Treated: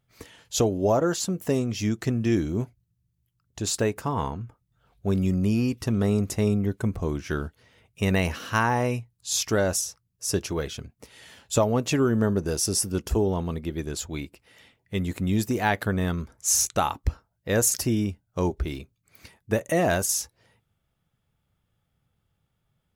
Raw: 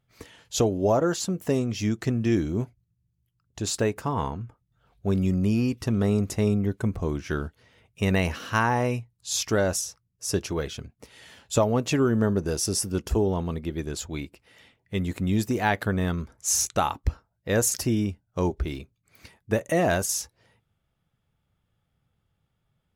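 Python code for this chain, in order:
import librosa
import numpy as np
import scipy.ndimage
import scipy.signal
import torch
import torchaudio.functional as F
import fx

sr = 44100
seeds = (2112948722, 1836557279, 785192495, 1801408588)

y = fx.high_shelf(x, sr, hz=8100.0, db=4.5)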